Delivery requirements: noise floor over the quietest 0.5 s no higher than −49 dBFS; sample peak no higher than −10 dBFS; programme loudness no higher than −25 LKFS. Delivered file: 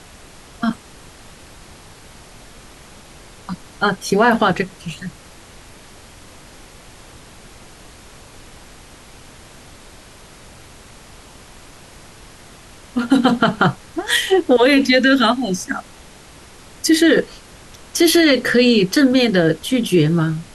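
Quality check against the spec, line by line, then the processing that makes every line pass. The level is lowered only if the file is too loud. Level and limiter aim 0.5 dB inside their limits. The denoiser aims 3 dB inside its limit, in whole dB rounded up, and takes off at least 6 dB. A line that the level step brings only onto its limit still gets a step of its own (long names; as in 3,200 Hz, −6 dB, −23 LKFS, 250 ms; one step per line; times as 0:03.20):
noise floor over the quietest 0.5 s −42 dBFS: out of spec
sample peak −4.5 dBFS: out of spec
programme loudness −16.0 LKFS: out of spec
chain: level −9.5 dB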